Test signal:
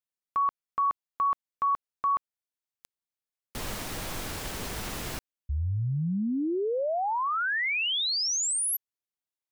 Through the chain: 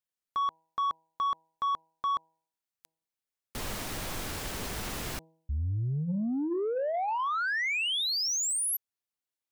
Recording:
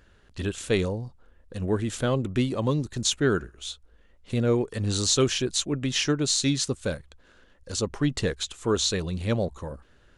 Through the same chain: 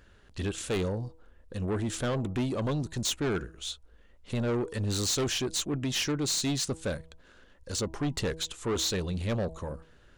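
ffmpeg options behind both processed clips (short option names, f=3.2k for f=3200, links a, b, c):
-af "bandreject=f=161.4:t=h:w=4,bandreject=f=322.8:t=h:w=4,bandreject=f=484.2:t=h:w=4,bandreject=f=645.6:t=h:w=4,bandreject=f=807:t=h:w=4,bandreject=f=968.4:t=h:w=4,asoftclip=type=tanh:threshold=-25dB"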